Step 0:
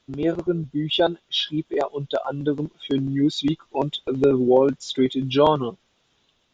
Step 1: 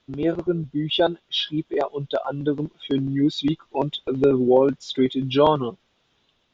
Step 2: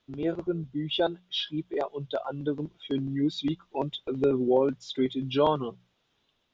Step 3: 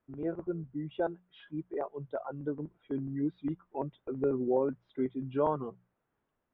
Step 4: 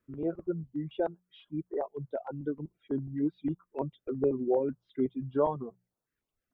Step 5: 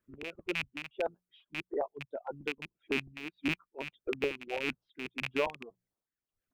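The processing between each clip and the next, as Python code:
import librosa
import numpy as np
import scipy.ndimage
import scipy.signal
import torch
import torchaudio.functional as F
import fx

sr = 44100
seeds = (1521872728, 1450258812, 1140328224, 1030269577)

y1 = scipy.signal.sosfilt(scipy.signal.butter(2, 5200.0, 'lowpass', fs=sr, output='sos'), x)
y2 = fx.hum_notches(y1, sr, base_hz=60, count=3)
y2 = y2 * 10.0 ** (-6.5 / 20.0)
y3 = scipy.signal.sosfilt(scipy.signal.butter(4, 1800.0, 'lowpass', fs=sr, output='sos'), y2)
y3 = y3 * 10.0 ** (-5.5 / 20.0)
y4 = fx.dereverb_blind(y3, sr, rt60_s=0.94)
y4 = fx.filter_held_notch(y4, sr, hz=6.6, low_hz=780.0, high_hz=3000.0)
y4 = y4 * 10.0 ** (3.0 / 20.0)
y5 = fx.rattle_buzz(y4, sr, strikes_db=-35.0, level_db=-20.0)
y5 = y5 * (1.0 - 0.66 / 2.0 + 0.66 / 2.0 * np.cos(2.0 * np.pi * 1.7 * (np.arange(len(y5)) / sr)))
y5 = fx.hpss(y5, sr, part='harmonic', gain_db=-13)
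y5 = y5 * 10.0 ** (1.5 / 20.0)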